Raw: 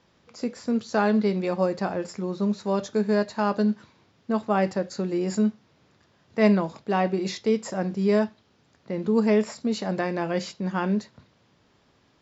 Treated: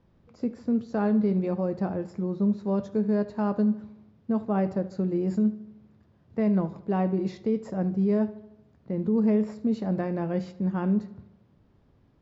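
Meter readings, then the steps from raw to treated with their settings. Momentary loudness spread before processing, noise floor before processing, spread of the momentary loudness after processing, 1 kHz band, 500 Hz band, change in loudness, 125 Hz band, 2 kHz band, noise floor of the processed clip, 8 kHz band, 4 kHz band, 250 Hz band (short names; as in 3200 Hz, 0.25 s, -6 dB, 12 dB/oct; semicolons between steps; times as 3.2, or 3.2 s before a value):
9 LU, -64 dBFS, 8 LU, -7.0 dB, -4.5 dB, -1.5 dB, +1.0 dB, -11.5 dB, -62 dBFS, n/a, under -15 dB, 0.0 dB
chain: tilt -4 dB/oct; limiter -10 dBFS, peak gain reduction 7 dB; on a send: darkening echo 75 ms, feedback 57%, low-pass 5000 Hz, level -17 dB; on the sum: gain -7.5 dB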